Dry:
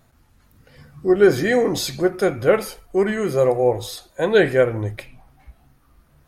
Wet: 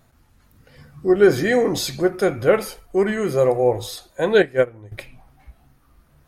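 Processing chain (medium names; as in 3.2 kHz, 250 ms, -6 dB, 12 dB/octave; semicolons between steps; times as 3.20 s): 4.42–4.92 s: upward expansion 2.5:1, over -23 dBFS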